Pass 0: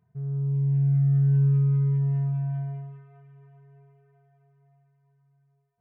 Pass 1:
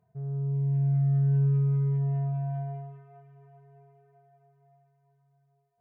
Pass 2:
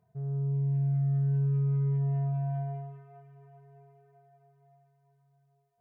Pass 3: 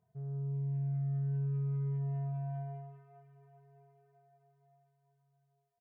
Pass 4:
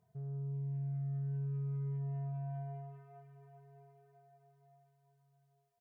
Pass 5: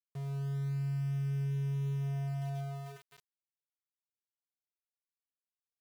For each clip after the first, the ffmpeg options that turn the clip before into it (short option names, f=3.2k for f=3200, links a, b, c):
-af "equalizer=f=620:t=o:w=0.83:g=13,volume=-3.5dB"
-af "acompressor=threshold=-25dB:ratio=6"
-af "aecho=1:1:76:0.0944,volume=-6dB"
-af "acompressor=threshold=-50dB:ratio=1.5,volume=2.5dB"
-af "aeval=exprs='val(0)*gte(abs(val(0)),0.00355)':c=same,volume=4dB"